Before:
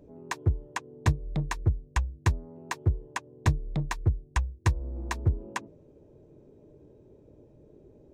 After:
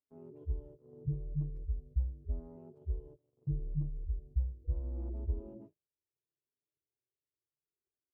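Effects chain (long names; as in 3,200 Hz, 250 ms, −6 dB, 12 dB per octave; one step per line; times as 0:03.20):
harmonic-percussive split with one part muted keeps harmonic
repeating echo 82 ms, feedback 27%, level −16 dB
noise gate −48 dBFS, range −44 dB
level −4 dB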